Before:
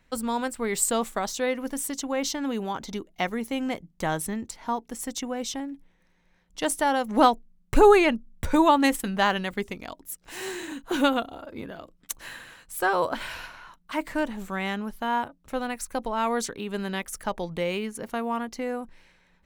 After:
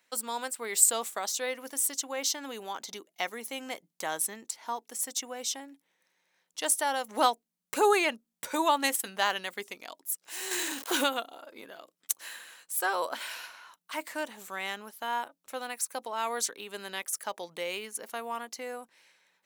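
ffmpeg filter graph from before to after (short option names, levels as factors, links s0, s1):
-filter_complex "[0:a]asettb=1/sr,asplit=3[s0][s1][s2];[s0]atrim=end=10.514[s3];[s1]atrim=start=10.51:end=11.04,asetpts=PTS-STARTPTS,afade=t=in:d=0.004:c=qsin,afade=t=out:st=0.526:d=0.004:c=qsin,aeval=exprs='val(0)+0.5*0.0141*sgn(val(0))':c=same,acontrast=30[s4];[s2]atrim=start=11.036[s5];[s3][s4]acrossfade=d=0.004:c1=hsin:c2=qsin[s6];[s6][s5]acrossfade=d=0.004:c1=qsin:c2=hsin,highpass=430,highshelf=f=3800:g=11.5,volume=0.501"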